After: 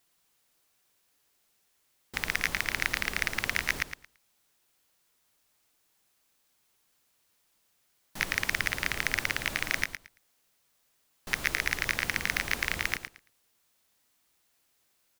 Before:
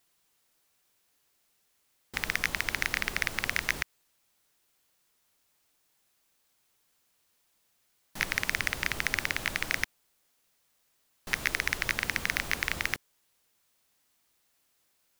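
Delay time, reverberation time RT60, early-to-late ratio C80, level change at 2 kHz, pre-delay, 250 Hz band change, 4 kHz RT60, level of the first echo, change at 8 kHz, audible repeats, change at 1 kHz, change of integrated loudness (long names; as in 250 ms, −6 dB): 112 ms, no reverb audible, no reverb audible, +0.5 dB, no reverb audible, +0.5 dB, no reverb audible, −9.0 dB, +0.5 dB, 2, +0.5 dB, +0.5 dB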